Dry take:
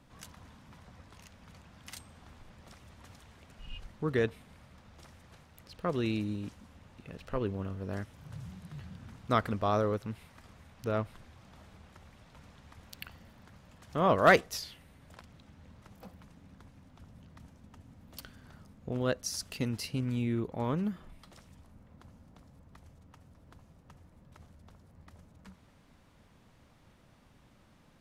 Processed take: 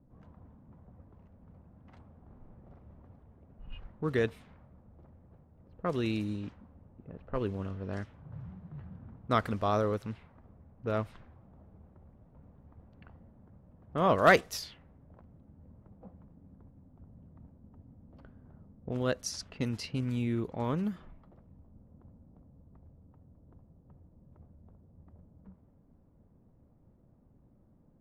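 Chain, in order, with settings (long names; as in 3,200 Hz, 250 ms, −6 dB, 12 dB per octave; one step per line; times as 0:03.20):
0:02.26–0:03.01: double-tracking delay 44 ms −3 dB
low-pass that shuts in the quiet parts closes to 430 Hz, open at −29.5 dBFS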